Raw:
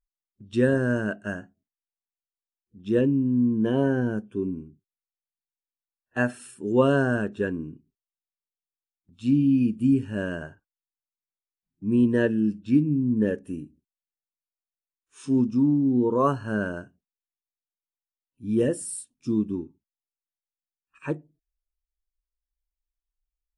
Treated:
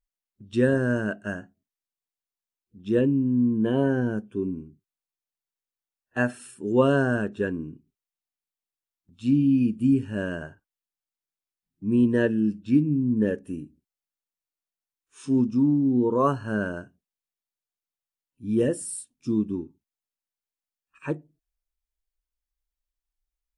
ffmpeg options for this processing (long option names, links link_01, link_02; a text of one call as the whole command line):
ffmpeg -i in.wav -filter_complex "[0:a]asettb=1/sr,asplit=3[link_01][link_02][link_03];[link_01]atrim=end=2.964[link_04];[link_02]atrim=start=2.96:end=3.89,asetpts=PTS-STARTPTS,afade=type=in:duration=0.004:curve=qsin,afade=type=out:start_time=0.926:duration=0.004:curve=qsin,asuperstop=centerf=5400:order=8:qfactor=2.9[link_05];[link_03]atrim=start=3.886[link_06];[link_04][link_05]acrossfade=duration=0.004:curve1=hsin:curve2=qsin[link_07];[link_07][link_06]acrossfade=duration=0.004:curve1=qsin:curve2=hsin" out.wav